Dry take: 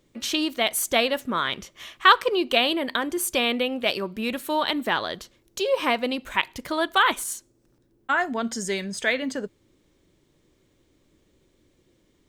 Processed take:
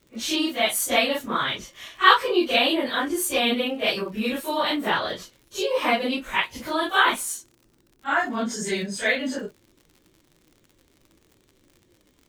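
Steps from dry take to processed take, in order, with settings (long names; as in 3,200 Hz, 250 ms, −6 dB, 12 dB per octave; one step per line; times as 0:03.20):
random phases in long frames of 100 ms
surface crackle 82 per second −43 dBFS
level +1 dB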